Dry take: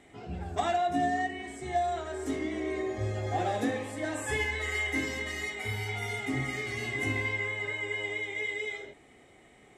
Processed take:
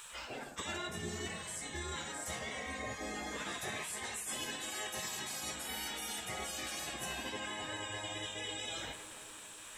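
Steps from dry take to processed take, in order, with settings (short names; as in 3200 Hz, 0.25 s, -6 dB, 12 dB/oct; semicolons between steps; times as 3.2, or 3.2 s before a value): spectral gate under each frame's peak -15 dB weak; high shelf 7400 Hz +11.5 dB; darkening echo 0.267 s, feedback 72%, low-pass 1900 Hz, level -20.5 dB; reverse; compressor 5:1, threshold -54 dBFS, peak gain reduction 19 dB; reverse; gain +14 dB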